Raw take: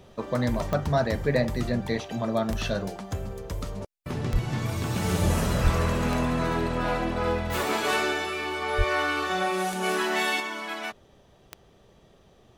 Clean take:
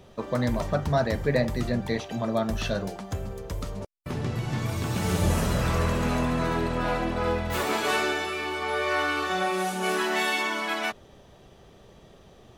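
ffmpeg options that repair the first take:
-filter_complex "[0:a]adeclick=t=4,asplit=3[s0][s1][s2];[s0]afade=t=out:st=4.32:d=0.02[s3];[s1]highpass=f=140:w=0.5412,highpass=f=140:w=1.3066,afade=t=in:st=4.32:d=0.02,afade=t=out:st=4.44:d=0.02[s4];[s2]afade=t=in:st=4.44:d=0.02[s5];[s3][s4][s5]amix=inputs=3:normalize=0,asplit=3[s6][s7][s8];[s6]afade=t=out:st=5.63:d=0.02[s9];[s7]highpass=f=140:w=0.5412,highpass=f=140:w=1.3066,afade=t=in:st=5.63:d=0.02,afade=t=out:st=5.75:d=0.02[s10];[s8]afade=t=in:st=5.75:d=0.02[s11];[s9][s10][s11]amix=inputs=3:normalize=0,asplit=3[s12][s13][s14];[s12]afade=t=out:st=8.77:d=0.02[s15];[s13]highpass=f=140:w=0.5412,highpass=f=140:w=1.3066,afade=t=in:st=8.77:d=0.02,afade=t=out:st=8.89:d=0.02[s16];[s14]afade=t=in:st=8.89:d=0.02[s17];[s15][s16][s17]amix=inputs=3:normalize=0,asetnsamples=n=441:p=0,asendcmd='10.4 volume volume 5dB',volume=1"

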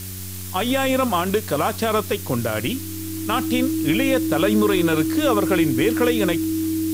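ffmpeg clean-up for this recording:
-af "adeclick=t=4,bandreject=f=94.1:t=h:w=4,bandreject=f=188.2:t=h:w=4,bandreject=f=282.3:t=h:w=4,bandreject=f=376.4:t=h:w=4,bandreject=f=320:w=30,afftdn=nr=30:nf=-32"

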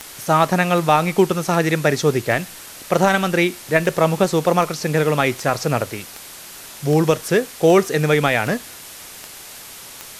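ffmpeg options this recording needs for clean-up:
-af "adeclick=t=4,afwtdn=0.016"

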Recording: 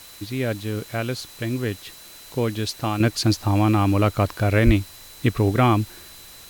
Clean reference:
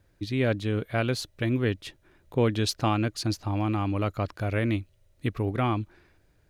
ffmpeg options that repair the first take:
-filter_complex "[0:a]bandreject=f=4000:w=30,asplit=3[s0][s1][s2];[s0]afade=t=out:st=4.65:d=0.02[s3];[s1]highpass=f=140:w=0.5412,highpass=f=140:w=1.3066,afade=t=in:st=4.65:d=0.02,afade=t=out:st=4.77:d=0.02[s4];[s2]afade=t=in:st=4.77:d=0.02[s5];[s3][s4][s5]amix=inputs=3:normalize=0,afwtdn=0.0063,asetnsamples=n=441:p=0,asendcmd='3 volume volume -8.5dB',volume=1"

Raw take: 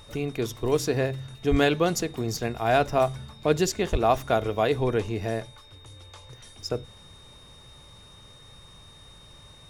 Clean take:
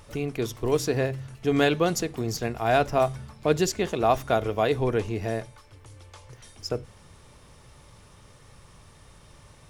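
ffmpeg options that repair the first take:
-filter_complex "[0:a]bandreject=f=3700:w=30,asplit=3[s0][s1][s2];[s0]afade=t=out:st=1.5:d=0.02[s3];[s1]highpass=f=140:w=0.5412,highpass=f=140:w=1.3066,afade=t=in:st=1.5:d=0.02,afade=t=out:st=1.62:d=0.02[s4];[s2]afade=t=in:st=1.62:d=0.02[s5];[s3][s4][s5]amix=inputs=3:normalize=0,asplit=3[s6][s7][s8];[s6]afade=t=out:st=3.91:d=0.02[s9];[s7]highpass=f=140:w=0.5412,highpass=f=140:w=1.3066,afade=t=in:st=3.91:d=0.02,afade=t=out:st=4.03:d=0.02[s10];[s8]afade=t=in:st=4.03:d=0.02[s11];[s9][s10][s11]amix=inputs=3:normalize=0"

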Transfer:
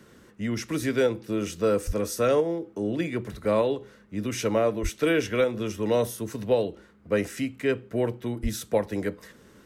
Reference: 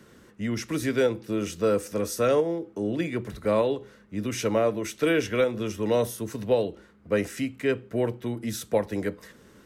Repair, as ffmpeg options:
-filter_complex "[0:a]asplit=3[s0][s1][s2];[s0]afade=t=out:st=1.86:d=0.02[s3];[s1]highpass=f=140:w=0.5412,highpass=f=140:w=1.3066,afade=t=in:st=1.86:d=0.02,afade=t=out:st=1.98:d=0.02[s4];[s2]afade=t=in:st=1.98:d=0.02[s5];[s3][s4][s5]amix=inputs=3:normalize=0,asplit=3[s6][s7][s8];[s6]afade=t=out:st=4.82:d=0.02[s9];[s7]highpass=f=140:w=0.5412,highpass=f=140:w=1.3066,afade=t=in:st=4.82:d=0.02,afade=t=out:st=4.94:d=0.02[s10];[s8]afade=t=in:st=4.94:d=0.02[s11];[s9][s10][s11]amix=inputs=3:normalize=0,asplit=3[s12][s13][s14];[s12]afade=t=out:st=8.42:d=0.02[s15];[s13]highpass=f=140:w=0.5412,highpass=f=140:w=1.3066,afade=t=in:st=8.42:d=0.02,afade=t=out:st=8.54:d=0.02[s16];[s14]afade=t=in:st=8.54:d=0.02[s17];[s15][s16][s17]amix=inputs=3:normalize=0"

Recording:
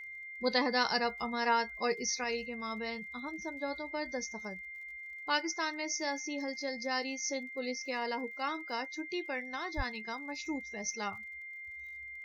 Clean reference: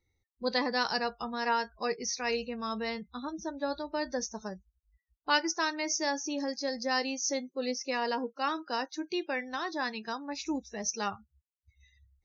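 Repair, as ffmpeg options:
-filter_complex "[0:a]adeclick=t=4,bandreject=f=2100:w=30,asplit=3[s0][s1][s2];[s0]afade=t=out:st=9.76:d=0.02[s3];[s1]highpass=f=140:w=0.5412,highpass=f=140:w=1.3066,afade=t=in:st=9.76:d=0.02,afade=t=out:st=9.88:d=0.02[s4];[s2]afade=t=in:st=9.88:d=0.02[s5];[s3][s4][s5]amix=inputs=3:normalize=0,asetnsamples=n=441:p=0,asendcmd='2.24 volume volume 4.5dB',volume=1"

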